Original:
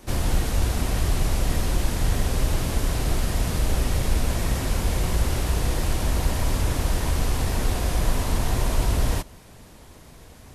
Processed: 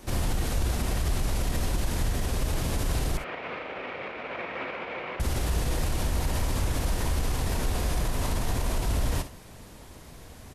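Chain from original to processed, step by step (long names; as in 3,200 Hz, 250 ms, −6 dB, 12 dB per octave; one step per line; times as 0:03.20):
brickwall limiter −19 dBFS, peak gain reduction 10 dB
0:03.17–0:05.20: loudspeaker in its box 420–2,800 Hz, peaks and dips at 510 Hz +4 dB, 1,300 Hz +4 dB, 2,300 Hz +8 dB
on a send: ambience of single reflections 56 ms −13 dB, 70 ms −15.5 dB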